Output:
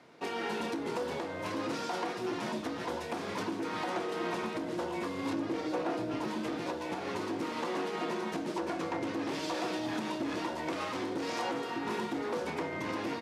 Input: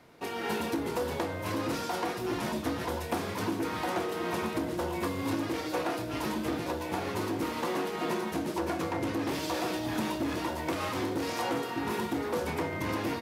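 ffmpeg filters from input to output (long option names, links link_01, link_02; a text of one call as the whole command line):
ffmpeg -i in.wav -filter_complex "[0:a]asplit=3[link_01][link_02][link_03];[link_01]afade=type=out:start_time=5.33:duration=0.02[link_04];[link_02]tiltshelf=frequency=970:gain=4,afade=type=in:start_time=5.33:duration=0.02,afade=type=out:start_time=6.27:duration=0.02[link_05];[link_03]afade=type=in:start_time=6.27:duration=0.02[link_06];[link_04][link_05][link_06]amix=inputs=3:normalize=0,alimiter=level_in=0.5dB:limit=-24dB:level=0:latency=1:release=223,volume=-0.5dB,highpass=160,lowpass=7300" out.wav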